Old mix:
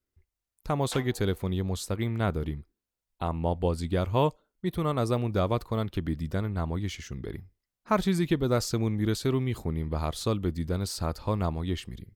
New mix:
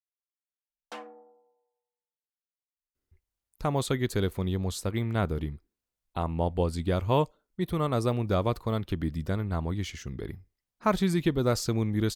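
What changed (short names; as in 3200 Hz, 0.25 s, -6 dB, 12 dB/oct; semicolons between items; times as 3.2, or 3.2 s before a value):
speech: entry +2.95 s; background: add tilt -2.5 dB/oct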